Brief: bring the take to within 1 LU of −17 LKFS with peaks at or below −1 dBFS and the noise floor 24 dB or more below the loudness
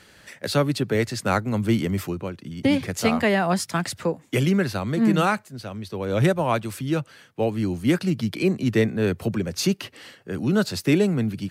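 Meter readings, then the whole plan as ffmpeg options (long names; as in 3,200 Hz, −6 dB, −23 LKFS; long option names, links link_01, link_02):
integrated loudness −23.5 LKFS; sample peak −8.5 dBFS; target loudness −17.0 LKFS
→ -af "volume=6.5dB"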